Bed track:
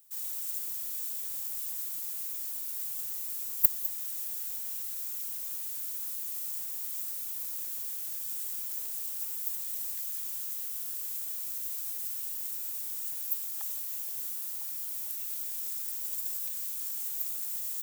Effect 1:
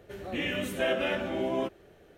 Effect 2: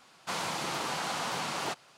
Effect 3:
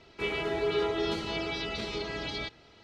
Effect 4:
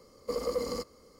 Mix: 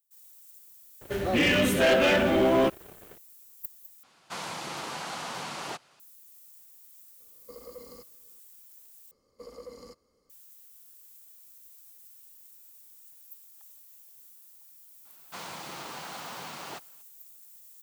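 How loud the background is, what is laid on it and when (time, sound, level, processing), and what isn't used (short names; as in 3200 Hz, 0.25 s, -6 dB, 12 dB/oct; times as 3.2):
bed track -17 dB
1.01 add 1 + sample leveller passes 3
4.03 replace with 2 -3 dB
7.2 add 4 -14.5 dB
9.11 replace with 4 -13.5 dB
15.05 add 2 -7 dB
not used: 3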